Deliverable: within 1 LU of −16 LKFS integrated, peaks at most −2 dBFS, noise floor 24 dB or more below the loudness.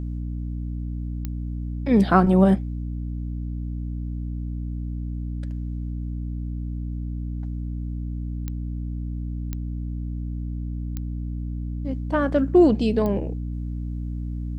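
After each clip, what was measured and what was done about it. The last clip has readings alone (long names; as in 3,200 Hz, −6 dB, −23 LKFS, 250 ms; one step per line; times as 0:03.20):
number of clicks 5; mains hum 60 Hz; hum harmonics up to 300 Hz; level of the hum −27 dBFS; integrated loudness −26.0 LKFS; sample peak −4.0 dBFS; target loudness −16.0 LKFS
→ click removal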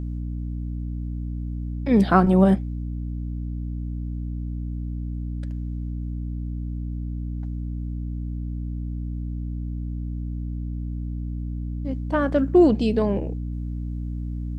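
number of clicks 0; mains hum 60 Hz; hum harmonics up to 300 Hz; level of the hum −27 dBFS
→ hum removal 60 Hz, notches 5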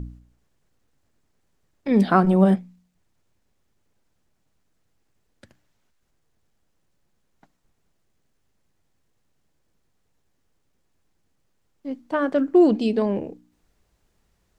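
mains hum none found; integrated loudness −20.0 LKFS; sample peak −4.0 dBFS; target loudness −16.0 LKFS
→ level +4 dB
brickwall limiter −2 dBFS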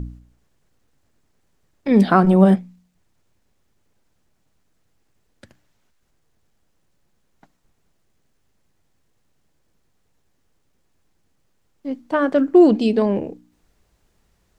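integrated loudness −16.5 LKFS; sample peak −2.0 dBFS; background noise floor −66 dBFS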